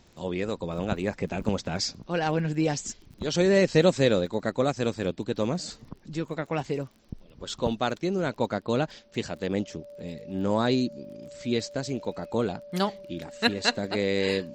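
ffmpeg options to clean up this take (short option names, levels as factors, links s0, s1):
-af "adeclick=t=4,bandreject=f=580:w=30"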